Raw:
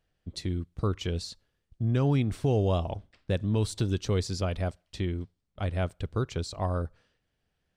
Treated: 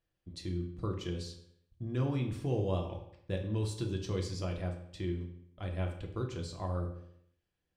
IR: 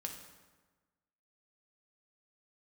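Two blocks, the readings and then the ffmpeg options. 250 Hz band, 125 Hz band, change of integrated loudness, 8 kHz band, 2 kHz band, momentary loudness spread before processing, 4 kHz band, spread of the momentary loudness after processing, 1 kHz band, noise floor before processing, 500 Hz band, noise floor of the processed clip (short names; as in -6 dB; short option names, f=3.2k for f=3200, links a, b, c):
-6.0 dB, -6.5 dB, -6.5 dB, -7.5 dB, -7.0 dB, 11 LU, -7.5 dB, 11 LU, -7.5 dB, -79 dBFS, -6.5 dB, -84 dBFS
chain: -filter_complex "[1:a]atrim=start_sample=2205,asetrate=83790,aresample=44100[a];[0:a][a]afir=irnorm=-1:irlink=0"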